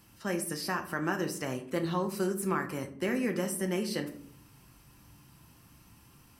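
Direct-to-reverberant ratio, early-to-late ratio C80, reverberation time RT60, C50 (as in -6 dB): 5.0 dB, 15.5 dB, 0.60 s, 12.0 dB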